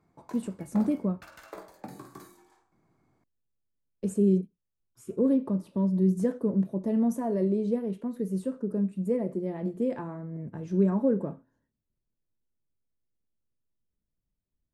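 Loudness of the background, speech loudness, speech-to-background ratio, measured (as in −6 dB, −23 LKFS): −48.0 LKFS, −28.5 LKFS, 19.5 dB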